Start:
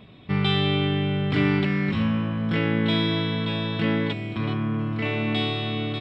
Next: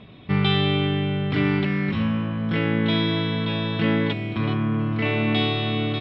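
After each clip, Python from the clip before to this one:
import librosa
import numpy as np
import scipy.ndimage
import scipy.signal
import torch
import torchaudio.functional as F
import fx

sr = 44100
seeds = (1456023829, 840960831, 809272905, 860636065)

y = scipy.signal.sosfilt(scipy.signal.butter(2, 5000.0, 'lowpass', fs=sr, output='sos'), x)
y = fx.rider(y, sr, range_db=10, speed_s=2.0)
y = y * librosa.db_to_amplitude(1.0)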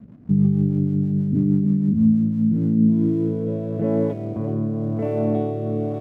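y = fx.filter_sweep_lowpass(x, sr, from_hz=230.0, to_hz=600.0, start_s=2.91, end_s=3.64, q=3.1)
y = np.sign(y) * np.maximum(np.abs(y) - 10.0 ** (-52.5 / 20.0), 0.0)
y = fx.rotary_switch(y, sr, hz=6.3, then_hz=1.0, switch_at_s=2.07)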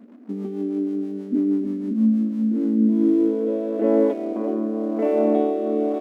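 y = fx.brickwall_highpass(x, sr, low_hz=220.0)
y = y * librosa.db_to_amplitude(4.5)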